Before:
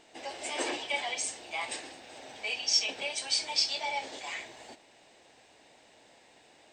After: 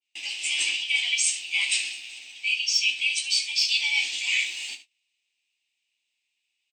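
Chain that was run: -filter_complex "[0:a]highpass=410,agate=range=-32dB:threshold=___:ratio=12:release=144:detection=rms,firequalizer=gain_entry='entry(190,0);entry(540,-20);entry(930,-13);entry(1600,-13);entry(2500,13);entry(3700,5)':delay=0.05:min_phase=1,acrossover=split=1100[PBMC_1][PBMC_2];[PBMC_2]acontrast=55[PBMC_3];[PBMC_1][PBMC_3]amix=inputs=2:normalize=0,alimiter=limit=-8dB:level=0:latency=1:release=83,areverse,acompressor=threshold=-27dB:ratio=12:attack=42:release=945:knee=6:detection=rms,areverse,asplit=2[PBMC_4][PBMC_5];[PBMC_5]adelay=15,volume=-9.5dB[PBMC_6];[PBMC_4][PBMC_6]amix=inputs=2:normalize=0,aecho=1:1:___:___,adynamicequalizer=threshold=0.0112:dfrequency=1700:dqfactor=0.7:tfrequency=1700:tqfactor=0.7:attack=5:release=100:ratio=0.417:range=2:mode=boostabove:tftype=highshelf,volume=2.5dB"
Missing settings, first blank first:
-50dB, 73, 0.211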